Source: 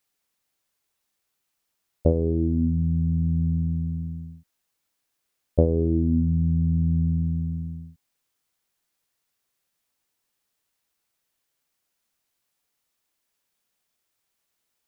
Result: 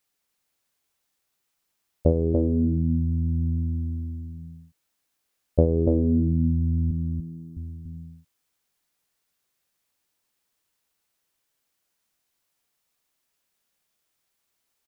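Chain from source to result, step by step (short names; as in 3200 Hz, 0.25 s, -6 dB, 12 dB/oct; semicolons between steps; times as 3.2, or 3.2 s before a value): 6.91–7.57 fixed phaser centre 400 Hz, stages 8; echo 0.288 s -5.5 dB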